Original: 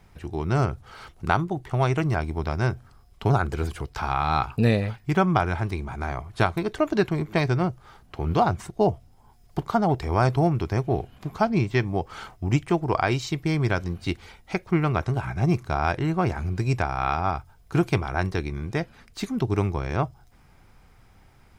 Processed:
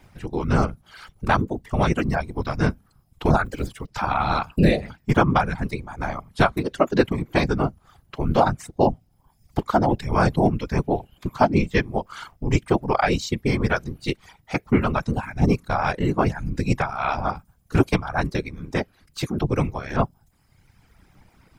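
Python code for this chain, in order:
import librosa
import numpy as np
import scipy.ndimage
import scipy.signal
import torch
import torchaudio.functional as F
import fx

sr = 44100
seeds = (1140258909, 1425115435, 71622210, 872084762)

y = fx.law_mismatch(x, sr, coded='A', at=(3.44, 3.87), fade=0.02)
y = fx.dereverb_blind(y, sr, rt60_s=1.3)
y = fx.whisperise(y, sr, seeds[0])
y = y * 10.0 ** (3.5 / 20.0)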